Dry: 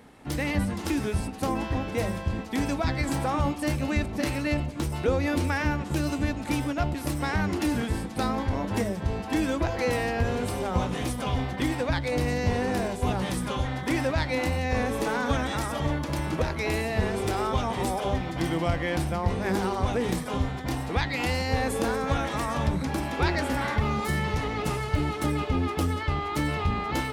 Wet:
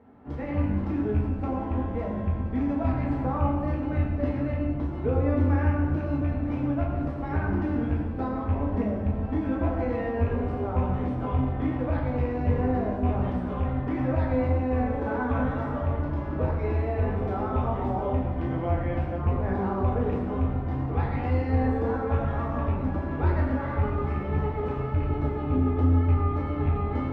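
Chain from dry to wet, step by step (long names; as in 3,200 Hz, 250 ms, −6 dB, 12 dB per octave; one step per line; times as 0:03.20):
loose part that buzzes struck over −22 dBFS, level −19 dBFS
low-pass filter 1,100 Hz 12 dB per octave
parametric band 120 Hz −3 dB 1.6 octaves
convolution reverb RT60 1.4 s, pre-delay 6 ms, DRR −4 dB
level −5 dB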